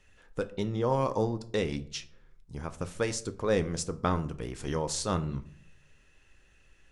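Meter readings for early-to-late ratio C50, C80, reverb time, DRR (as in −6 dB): 17.0 dB, 21.0 dB, 0.60 s, 9.5 dB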